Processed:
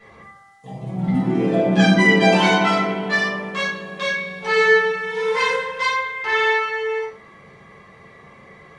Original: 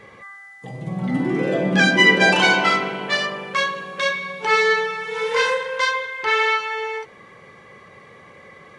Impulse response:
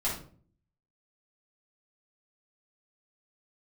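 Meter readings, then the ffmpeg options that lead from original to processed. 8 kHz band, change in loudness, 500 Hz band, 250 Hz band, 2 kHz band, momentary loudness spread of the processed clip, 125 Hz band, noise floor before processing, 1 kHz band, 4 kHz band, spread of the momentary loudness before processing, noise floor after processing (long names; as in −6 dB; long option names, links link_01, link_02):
−2.5 dB, +0.5 dB, +2.5 dB, +4.5 dB, −1.0 dB, 11 LU, +5.0 dB, −46 dBFS, 0.0 dB, −3.0 dB, 13 LU, −47 dBFS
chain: -filter_complex "[1:a]atrim=start_sample=2205[link_01];[0:a][link_01]afir=irnorm=-1:irlink=0,volume=-7dB"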